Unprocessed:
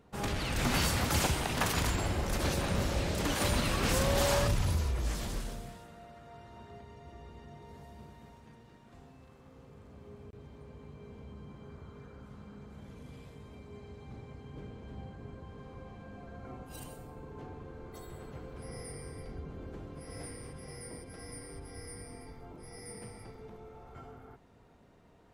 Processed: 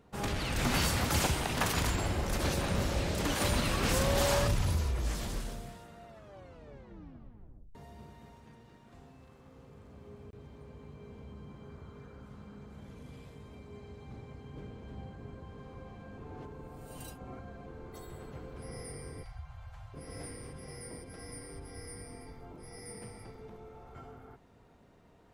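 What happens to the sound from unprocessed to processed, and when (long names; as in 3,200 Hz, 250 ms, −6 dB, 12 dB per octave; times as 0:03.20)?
0:06.07: tape stop 1.68 s
0:16.18–0:17.66: reverse
0:19.23–0:19.94: Chebyshev band-stop filter 120–740 Hz, order 3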